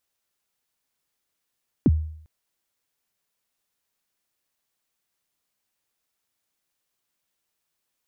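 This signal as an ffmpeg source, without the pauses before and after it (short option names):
-f lavfi -i "aevalsrc='0.282*pow(10,-3*t/0.63)*sin(2*PI*(350*0.038/log(78/350)*(exp(log(78/350)*min(t,0.038)/0.038)-1)+78*max(t-0.038,0)))':d=0.4:s=44100"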